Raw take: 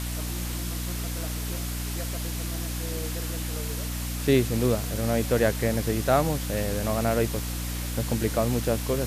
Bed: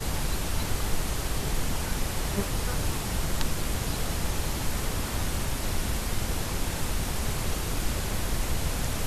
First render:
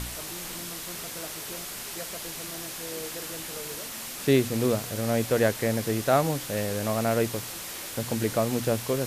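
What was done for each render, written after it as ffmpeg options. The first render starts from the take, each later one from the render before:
-af "bandreject=f=60:t=h:w=4,bandreject=f=120:t=h:w=4,bandreject=f=180:t=h:w=4,bandreject=f=240:t=h:w=4,bandreject=f=300:t=h:w=4"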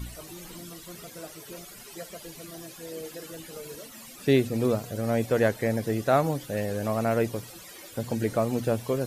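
-af "afftdn=nr=15:nf=-38"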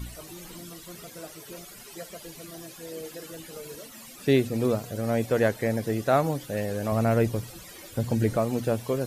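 -filter_complex "[0:a]asettb=1/sr,asplit=3[s0][s1][s2];[s0]atrim=end=6.924[s3];[s1]atrim=start=6.92:end=8.37,asetpts=PTS-STARTPTS,afade=t=in:d=0.004:c=qsin,afade=t=out:st=1.446:d=0.004:c=qsin,lowshelf=f=150:g=11[s4];[s2]atrim=start=8.366[s5];[s3][s4]acrossfade=d=0.004:c1=hsin:c2=qsin[s6];[s6][s5]acrossfade=d=0.004:c1=qsin:c2=hsin"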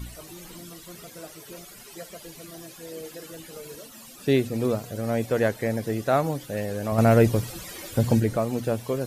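-filter_complex "[0:a]asettb=1/sr,asplit=3[s0][s1][s2];[s0]atrim=end=3.804[s3];[s1]atrim=start=3.8:end=4.31,asetpts=PTS-STARTPTS,afade=t=in:d=0.004:c=qsin,afade=t=out:st=0.506:d=0.004:c=qsin,equalizer=f=2100:w=5.6:g=-7[s4];[s2]atrim=start=4.306[s5];[s3][s4]acrossfade=d=0.004:c1=hsin:c2=qsin[s6];[s6][s5]acrossfade=d=0.004:c1=qsin:c2=hsin,asettb=1/sr,asplit=3[s7][s8][s9];[s7]atrim=end=6.984[s10];[s8]atrim=start=6.98:end=8.2,asetpts=PTS-STARTPTS,afade=t=in:d=0.004:c=qsin,afade=t=out:st=1.216:d=0.004:c=qsin,acontrast=48[s11];[s9]atrim=start=8.196[s12];[s10][s11]acrossfade=d=0.004:c1=hsin:c2=qsin[s13];[s13][s12]acrossfade=d=0.004:c1=qsin:c2=hsin"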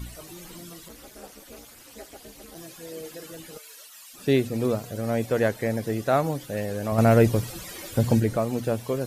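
-filter_complex "[0:a]asplit=3[s0][s1][s2];[s0]afade=t=out:st=0.88:d=0.02[s3];[s1]aeval=exprs='val(0)*sin(2*PI*120*n/s)':c=same,afade=t=in:st=0.88:d=0.02,afade=t=out:st=2.54:d=0.02[s4];[s2]afade=t=in:st=2.54:d=0.02[s5];[s3][s4][s5]amix=inputs=3:normalize=0,asplit=3[s6][s7][s8];[s6]afade=t=out:st=3.57:d=0.02[s9];[s7]highpass=1300,afade=t=in:st=3.57:d=0.02,afade=t=out:st=4.13:d=0.02[s10];[s8]afade=t=in:st=4.13:d=0.02[s11];[s9][s10][s11]amix=inputs=3:normalize=0"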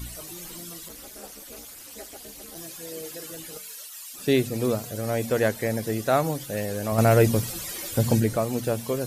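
-af "highshelf=f=4300:g=8,bandreject=f=45.97:t=h:w=4,bandreject=f=91.94:t=h:w=4,bandreject=f=137.91:t=h:w=4,bandreject=f=183.88:t=h:w=4,bandreject=f=229.85:t=h:w=4"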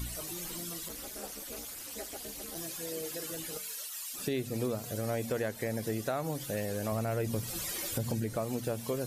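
-af "alimiter=limit=0.158:level=0:latency=1:release=235,acompressor=threshold=0.0178:ratio=2"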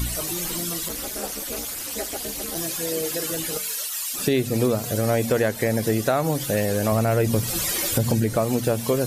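-af "volume=3.98"

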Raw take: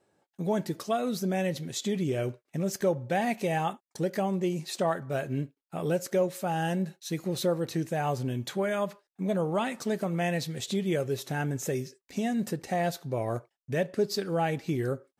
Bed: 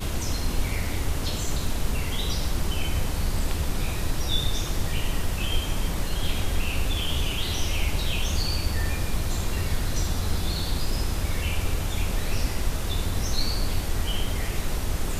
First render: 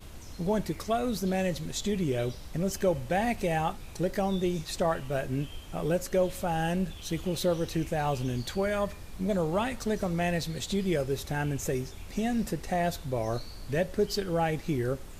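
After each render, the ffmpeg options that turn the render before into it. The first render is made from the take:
-filter_complex "[1:a]volume=0.133[s0];[0:a][s0]amix=inputs=2:normalize=0"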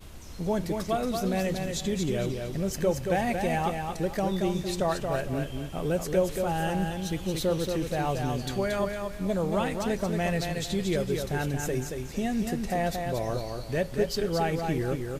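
-af "aecho=1:1:228|456|684|912:0.562|0.174|0.054|0.0168"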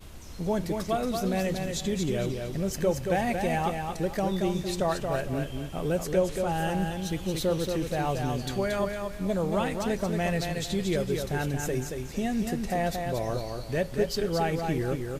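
-filter_complex "[0:a]asettb=1/sr,asplit=3[s0][s1][s2];[s0]atrim=end=6.124[s3];[s1]atrim=start=6.12:end=6.52,asetpts=PTS-STARTPTS,afade=t=in:d=0.004:c=qsin,afade=t=out:st=0.396:d=0.004:c=qsin,lowpass=11000[s4];[s2]atrim=start=6.516[s5];[s3][s4]acrossfade=d=0.004:c1=hsin:c2=qsin[s6];[s6][s5]acrossfade=d=0.004:c1=qsin:c2=hsin"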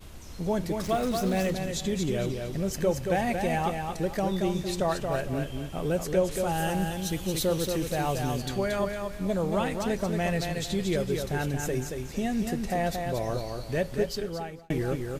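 -filter_complex "[0:a]asettb=1/sr,asplit=3[s0][s1][s2];[s0]atrim=end=0.834[s3];[s1]atrim=start=0.83:end=1.51,asetpts=PTS-STARTPTS,afade=t=in:d=0.004:c=qsin,afade=t=out:st=0.676:d=0.004:c=qsin,aeval=exprs='val(0)+0.5*0.015*sgn(val(0))':c=same[s4];[s2]atrim=start=1.506[s5];[s3][s4]acrossfade=d=0.004:c1=hsin:c2=qsin[s6];[s6][s5]acrossfade=d=0.004:c1=qsin:c2=hsin,asettb=1/sr,asplit=3[s7][s8][s9];[s7]atrim=end=6.314[s10];[s8]atrim=start=6.31:end=8.42,asetpts=PTS-STARTPTS,afade=t=in:d=0.004:c=qsin,afade=t=out:st=2.106:d=0.004:c=qsin,highshelf=f=5900:g=8.5[s11];[s9]atrim=start=8.416[s12];[s10][s11]acrossfade=d=0.004:c1=hsin:c2=qsin[s13];[s13][s12]acrossfade=d=0.004:c1=qsin:c2=hsin,asplit=2[s14][s15];[s14]atrim=end=14.7,asetpts=PTS-STARTPTS,afade=t=out:st=13.94:d=0.76[s16];[s15]atrim=start=14.7,asetpts=PTS-STARTPTS,afade=t=in:d=0.004:c=hsin[s17];[s16][s17]concat=n=2:v=0:a=1"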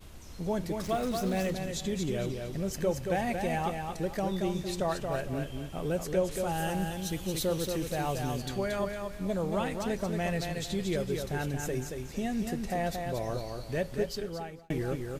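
-af "volume=0.668"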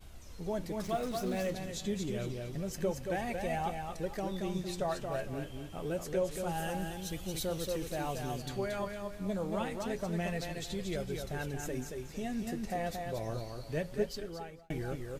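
-af "flanger=delay=1.3:depth=8.6:regen=57:speed=0.27:shape=sinusoidal"

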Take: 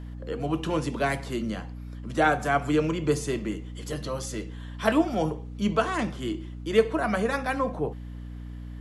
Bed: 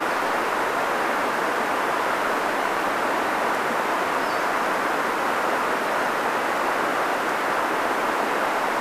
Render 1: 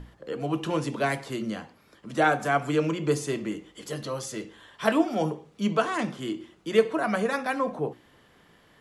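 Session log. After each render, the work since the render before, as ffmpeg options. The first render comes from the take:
-af "bandreject=f=60:t=h:w=6,bandreject=f=120:t=h:w=6,bandreject=f=180:t=h:w=6,bandreject=f=240:t=h:w=6,bandreject=f=300:t=h:w=6,bandreject=f=360:t=h:w=6"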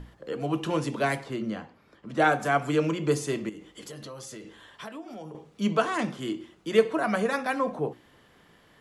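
-filter_complex "[0:a]asettb=1/sr,asplit=3[s0][s1][s2];[s0]atrim=end=1.234[s3];[s1]atrim=start=1.23:end=2.2,asetpts=PTS-STARTPTS,afade=t=in:d=0.004:c=qsin,afade=t=out:st=0.966:d=0.004:c=qsin,lowpass=f=2500:p=1[s4];[s2]atrim=start=2.196[s5];[s3][s4]acrossfade=d=0.004:c1=hsin:c2=qsin[s6];[s6][s5]acrossfade=d=0.004:c1=qsin:c2=hsin,asettb=1/sr,asplit=3[s7][s8][s9];[s7]atrim=end=3.494[s10];[s8]atrim=start=3.49:end=5.35,asetpts=PTS-STARTPTS,afade=t=in:d=0.004:c=qsin,afade=t=out:st=1.856:d=0.004:c=qsin,acompressor=threshold=0.0126:ratio=6:attack=3.2:release=140:knee=1:detection=peak[s11];[s9]atrim=start=5.346[s12];[s10][s11]acrossfade=d=0.004:c1=hsin:c2=qsin[s13];[s13][s12]acrossfade=d=0.004:c1=qsin:c2=hsin"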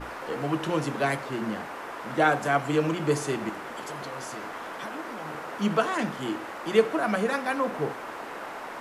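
-filter_complex "[1:a]volume=0.188[s0];[0:a][s0]amix=inputs=2:normalize=0"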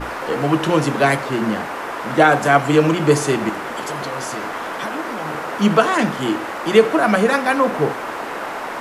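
-af "volume=3.35,alimiter=limit=0.891:level=0:latency=1"

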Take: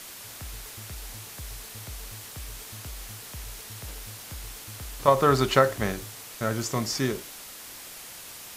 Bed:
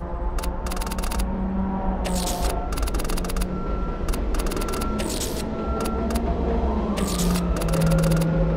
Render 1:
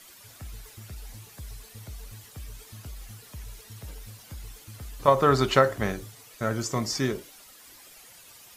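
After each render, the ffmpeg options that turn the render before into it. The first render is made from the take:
-af "afftdn=nr=11:nf=-43"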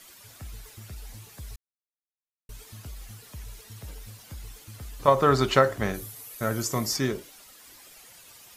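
-filter_complex "[0:a]asettb=1/sr,asplit=3[s0][s1][s2];[s0]atrim=end=5.944[s3];[s1]atrim=start=5.94:end=6.97,asetpts=PTS-STARTPTS,afade=t=in:d=0.004:c=qsin,afade=t=out:st=1.026:d=0.004:c=qsin,equalizer=f=12000:t=o:w=0.63:g=13.5[s4];[s2]atrim=start=6.966[s5];[s3][s4]acrossfade=d=0.004:c1=hsin:c2=qsin[s6];[s6][s5]acrossfade=d=0.004:c1=qsin:c2=hsin,asplit=3[s7][s8][s9];[s7]atrim=end=1.56,asetpts=PTS-STARTPTS,afade=t=out:st=1.556:d=0.004:c=hsin[s10];[s8]atrim=start=1.56:end=2.49,asetpts=PTS-STARTPTS,volume=0[s11];[s9]atrim=start=2.49,asetpts=PTS-STARTPTS,afade=t=in:d=0.004:c=hsin[s12];[s10][s11][s12]concat=n=3:v=0:a=1"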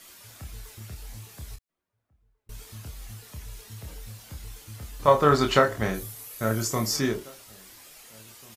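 -filter_complex "[0:a]asplit=2[s0][s1];[s1]adelay=27,volume=0.531[s2];[s0][s2]amix=inputs=2:normalize=0,asplit=2[s3][s4];[s4]adelay=1691,volume=0.0501,highshelf=f=4000:g=-38[s5];[s3][s5]amix=inputs=2:normalize=0"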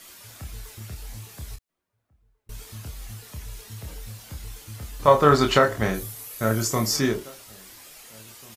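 -af "volume=1.41,alimiter=limit=0.708:level=0:latency=1"

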